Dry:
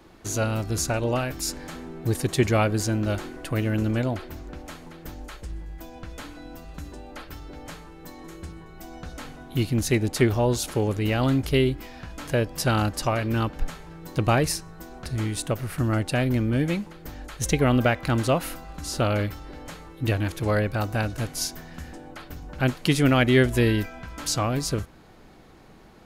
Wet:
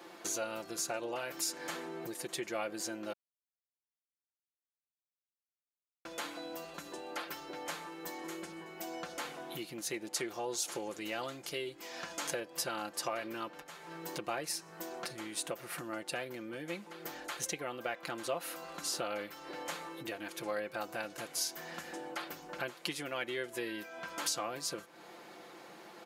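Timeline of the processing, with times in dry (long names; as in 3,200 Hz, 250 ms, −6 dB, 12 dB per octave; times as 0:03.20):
0:03.13–0:06.05: silence
0:10.14–0:12.40: parametric band 6,600 Hz +7 dB 1 octave
whole clip: downward compressor 5 to 1, threshold −36 dBFS; high-pass filter 410 Hz 12 dB per octave; comb filter 5.8 ms, depth 57%; level +2 dB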